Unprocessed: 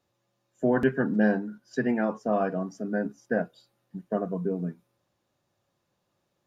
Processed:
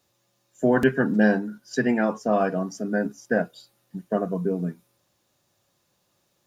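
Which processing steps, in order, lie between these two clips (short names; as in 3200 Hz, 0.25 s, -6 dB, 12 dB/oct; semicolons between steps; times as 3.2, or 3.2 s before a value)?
high shelf 3400 Hz +11 dB; gain +3.5 dB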